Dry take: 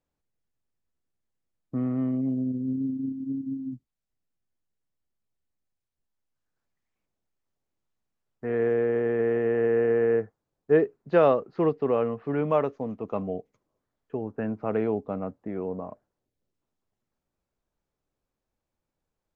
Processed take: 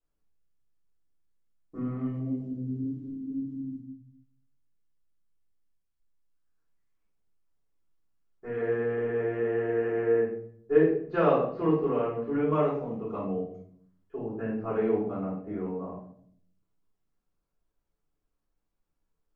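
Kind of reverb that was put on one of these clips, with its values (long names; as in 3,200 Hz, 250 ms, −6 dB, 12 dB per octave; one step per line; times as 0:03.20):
rectangular room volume 86 cubic metres, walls mixed, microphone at 3.9 metres
level −16 dB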